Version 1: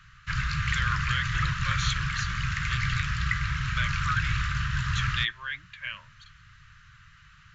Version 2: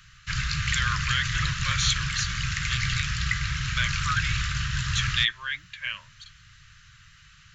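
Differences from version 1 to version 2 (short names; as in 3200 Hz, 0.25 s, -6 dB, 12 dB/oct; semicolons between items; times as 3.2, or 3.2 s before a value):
background: add bell 1100 Hz -5 dB 1.5 oct; master: add high shelf 3100 Hz +11.5 dB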